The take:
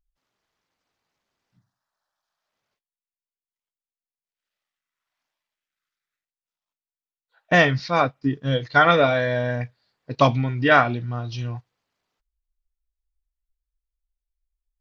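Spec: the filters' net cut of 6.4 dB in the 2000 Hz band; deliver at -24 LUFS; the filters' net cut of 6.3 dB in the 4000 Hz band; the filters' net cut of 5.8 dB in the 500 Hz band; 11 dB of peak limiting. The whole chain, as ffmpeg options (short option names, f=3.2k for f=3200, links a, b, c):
-af "equalizer=f=500:t=o:g=-7,equalizer=f=2k:t=o:g=-7.5,equalizer=f=4k:t=o:g=-5,volume=4.5dB,alimiter=limit=-13dB:level=0:latency=1"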